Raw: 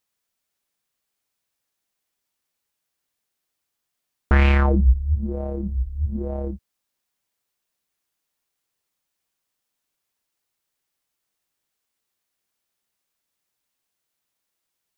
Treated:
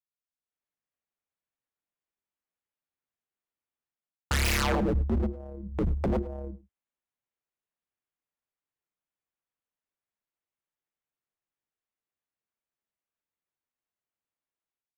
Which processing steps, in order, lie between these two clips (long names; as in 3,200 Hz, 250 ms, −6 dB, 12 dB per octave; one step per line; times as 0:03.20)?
adaptive Wiener filter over 9 samples
0:04.45–0:06.52: high-shelf EQ 2,200 Hz +11 dB
noise gate with hold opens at −17 dBFS
automatic gain control gain up to 11 dB
wave folding −20.5 dBFS
single-tap delay 103 ms −19 dB